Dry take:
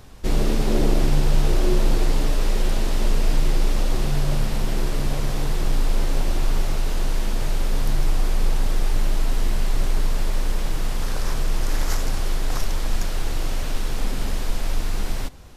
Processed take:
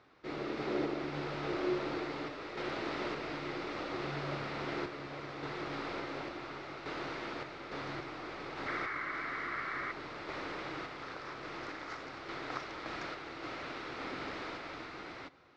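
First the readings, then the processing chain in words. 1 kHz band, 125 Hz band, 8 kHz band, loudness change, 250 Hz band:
-6.0 dB, -22.0 dB, -26.0 dB, -13.5 dB, -11.0 dB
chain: random-step tremolo; painted sound noise, 8.66–9.92, 1000–2300 Hz -38 dBFS; speaker cabinet 210–4300 Hz, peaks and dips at 210 Hz -9 dB, 320 Hz +5 dB, 1300 Hz +8 dB, 2100 Hz +6 dB, 3100 Hz -4 dB; gain -6.5 dB

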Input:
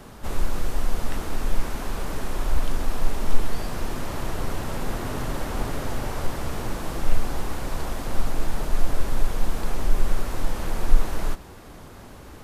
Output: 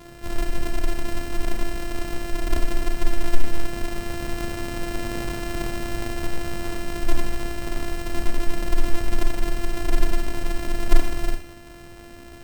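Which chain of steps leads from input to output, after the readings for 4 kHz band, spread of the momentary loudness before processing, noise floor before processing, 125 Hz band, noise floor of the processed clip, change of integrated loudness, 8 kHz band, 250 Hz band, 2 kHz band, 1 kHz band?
+2.5 dB, 4 LU, -43 dBFS, -1.0 dB, -42 dBFS, +1.0 dB, +0.5 dB, +3.5 dB, +3.5 dB, -1.0 dB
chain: sample sorter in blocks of 128 samples; Schroeder reverb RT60 0.48 s, combs from 26 ms, DRR 4.5 dB; gain -1 dB

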